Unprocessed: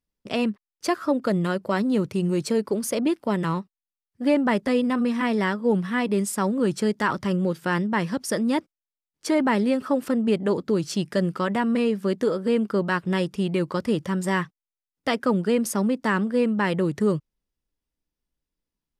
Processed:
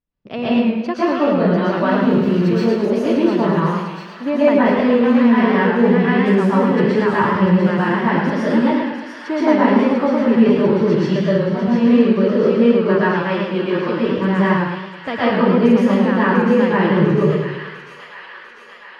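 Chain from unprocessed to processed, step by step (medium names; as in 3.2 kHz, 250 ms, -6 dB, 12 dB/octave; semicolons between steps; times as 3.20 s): 1.78–2.62 s: zero-crossing glitches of -27 dBFS; 11.23–11.72 s: peaking EQ 1.9 kHz -14 dB 2.7 oct; 13.01–14.06 s: high-pass 260 Hz 12 dB/octave; distance through air 280 m; feedback echo behind a high-pass 697 ms, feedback 69%, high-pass 1.8 kHz, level -6.5 dB; plate-style reverb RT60 0.53 s, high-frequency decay 0.9×, pre-delay 110 ms, DRR -7 dB; modulated delay 108 ms, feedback 51%, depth 114 cents, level -5 dB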